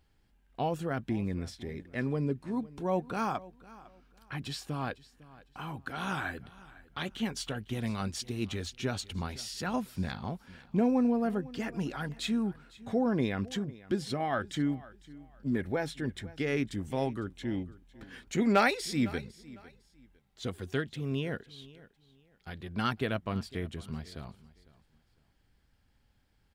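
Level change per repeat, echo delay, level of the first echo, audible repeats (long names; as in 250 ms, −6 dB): −11.5 dB, 504 ms, −20.0 dB, 2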